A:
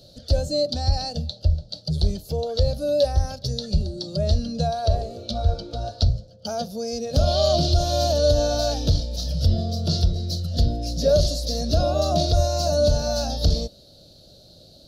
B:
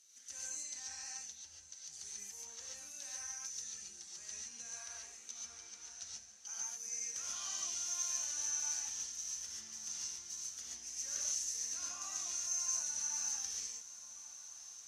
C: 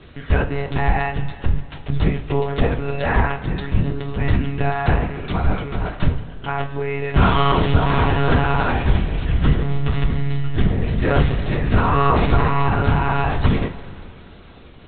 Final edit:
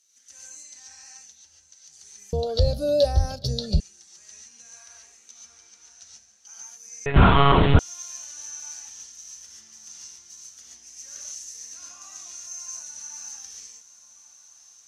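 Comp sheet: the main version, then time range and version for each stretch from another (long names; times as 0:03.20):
B
0:02.33–0:03.80: punch in from A
0:07.06–0:07.79: punch in from C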